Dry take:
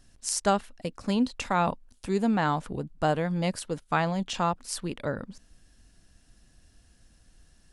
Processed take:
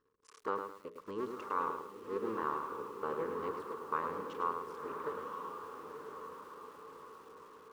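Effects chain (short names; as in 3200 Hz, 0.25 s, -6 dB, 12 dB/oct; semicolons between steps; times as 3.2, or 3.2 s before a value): cycle switcher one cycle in 2, muted; double band-pass 700 Hz, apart 1.3 oct; notches 60/120/180/240/300/360/420/480/540/600 Hz; on a send: diffused feedback echo 1.03 s, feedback 53%, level -6 dB; on the sum: lo-fi delay 0.106 s, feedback 35%, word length 10-bit, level -6.5 dB; gain +1.5 dB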